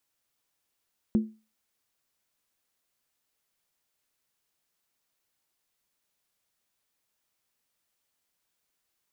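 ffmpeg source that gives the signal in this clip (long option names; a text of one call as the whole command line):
ffmpeg -f lavfi -i "aevalsrc='0.15*pow(10,-3*t/0.31)*sin(2*PI*218*t)+0.0376*pow(10,-3*t/0.246)*sin(2*PI*347.5*t)+0.00944*pow(10,-3*t/0.212)*sin(2*PI*465.6*t)+0.00237*pow(10,-3*t/0.205)*sin(2*PI*500.5*t)+0.000596*pow(10,-3*t/0.19)*sin(2*PI*578.4*t)':duration=0.63:sample_rate=44100" out.wav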